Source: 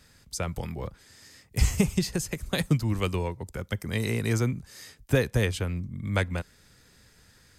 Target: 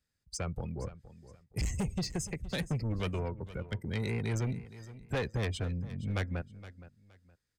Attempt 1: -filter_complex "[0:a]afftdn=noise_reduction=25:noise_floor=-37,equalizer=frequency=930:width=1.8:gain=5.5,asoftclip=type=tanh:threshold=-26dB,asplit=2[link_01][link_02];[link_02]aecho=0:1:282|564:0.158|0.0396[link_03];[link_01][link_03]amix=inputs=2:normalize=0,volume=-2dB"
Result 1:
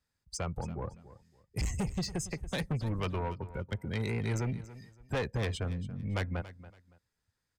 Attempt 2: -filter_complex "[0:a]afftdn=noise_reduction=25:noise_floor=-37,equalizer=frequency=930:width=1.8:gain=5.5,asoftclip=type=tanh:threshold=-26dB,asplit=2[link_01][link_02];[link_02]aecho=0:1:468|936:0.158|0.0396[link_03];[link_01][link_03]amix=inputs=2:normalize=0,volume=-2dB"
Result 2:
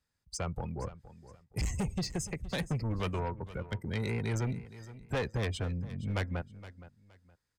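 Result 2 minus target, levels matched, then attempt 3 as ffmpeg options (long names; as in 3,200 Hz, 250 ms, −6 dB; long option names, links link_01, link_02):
1,000 Hz band +3.5 dB
-filter_complex "[0:a]afftdn=noise_reduction=25:noise_floor=-37,equalizer=frequency=930:width=1.8:gain=-2.5,asoftclip=type=tanh:threshold=-26dB,asplit=2[link_01][link_02];[link_02]aecho=0:1:468|936:0.158|0.0396[link_03];[link_01][link_03]amix=inputs=2:normalize=0,volume=-2dB"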